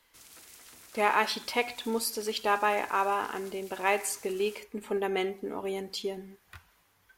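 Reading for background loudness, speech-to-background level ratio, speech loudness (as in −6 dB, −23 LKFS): −50.5 LKFS, 20.0 dB, −30.5 LKFS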